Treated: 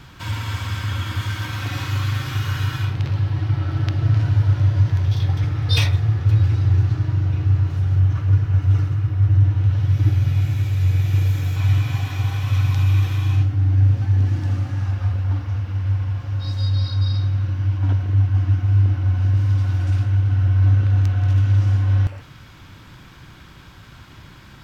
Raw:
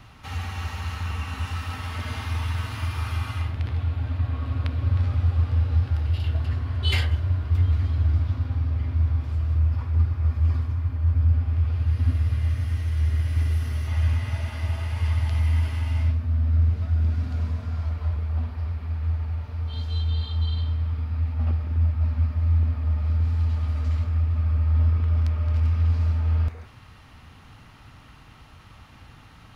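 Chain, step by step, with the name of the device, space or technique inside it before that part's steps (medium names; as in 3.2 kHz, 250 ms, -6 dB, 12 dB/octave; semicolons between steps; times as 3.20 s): nightcore (tape speed +20%); trim +5 dB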